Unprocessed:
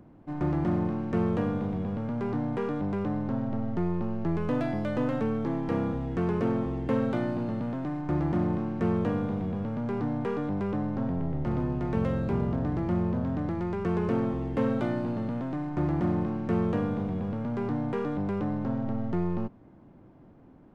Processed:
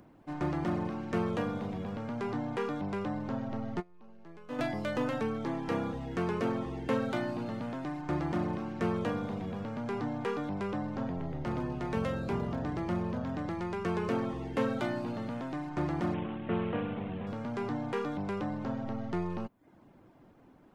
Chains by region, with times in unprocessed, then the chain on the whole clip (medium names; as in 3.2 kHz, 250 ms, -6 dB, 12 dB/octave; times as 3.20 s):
3.80–4.59 s: peaking EQ 79 Hz -12.5 dB 1.1 oct + feedback comb 240 Hz, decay 0.17 s, harmonics odd, mix 40% + transformer saturation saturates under 120 Hz
16.14–17.27 s: CVSD coder 16 kbps + treble shelf 2.1 kHz -8.5 dB
whole clip: bass shelf 300 Hz -7 dB; reverb removal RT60 0.5 s; treble shelf 2.4 kHz +8.5 dB